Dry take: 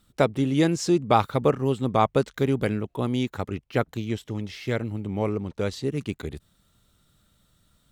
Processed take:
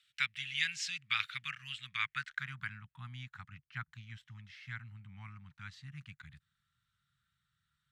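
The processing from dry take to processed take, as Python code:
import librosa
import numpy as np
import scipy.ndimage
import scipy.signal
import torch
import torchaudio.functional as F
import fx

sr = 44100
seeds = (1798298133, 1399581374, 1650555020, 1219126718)

y = scipy.signal.sosfilt(scipy.signal.cheby1(3, 1.0, [140.0, 1600.0], 'bandstop', fs=sr, output='sos'), x)
y = fx.cheby_harmonics(y, sr, harmonics=(5,), levels_db=(-44,), full_scale_db=-15.0)
y = fx.filter_sweep_bandpass(y, sr, from_hz=2600.0, to_hz=690.0, start_s=1.91, end_s=2.88, q=2.0)
y = y * 10.0 ** (5.0 / 20.0)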